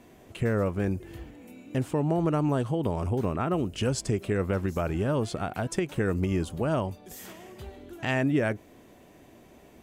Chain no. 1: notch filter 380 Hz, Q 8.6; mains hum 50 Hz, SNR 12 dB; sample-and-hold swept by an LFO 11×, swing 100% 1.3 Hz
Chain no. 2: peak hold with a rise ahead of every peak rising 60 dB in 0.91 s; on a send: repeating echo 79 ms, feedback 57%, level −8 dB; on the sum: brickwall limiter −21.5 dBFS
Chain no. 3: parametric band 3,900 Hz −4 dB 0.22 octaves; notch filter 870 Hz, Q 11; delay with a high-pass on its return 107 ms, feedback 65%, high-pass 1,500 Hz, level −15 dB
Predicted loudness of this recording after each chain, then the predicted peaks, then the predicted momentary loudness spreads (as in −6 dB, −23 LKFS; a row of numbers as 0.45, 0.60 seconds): −29.0, −31.0, −28.5 LKFS; −14.0, −21.5, −14.5 dBFS; 17, 11, 18 LU